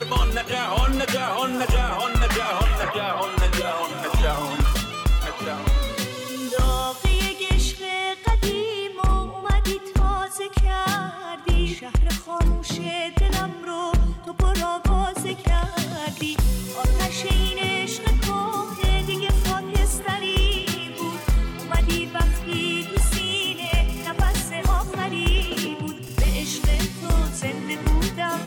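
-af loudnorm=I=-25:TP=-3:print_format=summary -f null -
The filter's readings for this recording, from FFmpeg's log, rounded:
Input Integrated:    -23.9 LUFS
Input True Peak:     -11.7 dBTP
Input LRA:             1.6 LU
Input Threshold:     -33.9 LUFS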